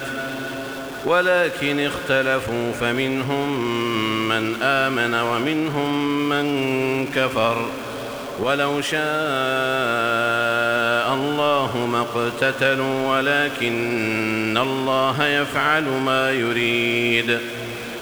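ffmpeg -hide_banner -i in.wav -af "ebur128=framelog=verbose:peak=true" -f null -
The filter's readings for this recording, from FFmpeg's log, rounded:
Integrated loudness:
  I:         -20.5 LUFS
  Threshold: -30.5 LUFS
Loudness range:
  LRA:         2.2 LU
  Threshold: -40.5 LUFS
  LRA low:   -21.6 LUFS
  LRA high:  -19.5 LUFS
True peak:
  Peak:       -2.8 dBFS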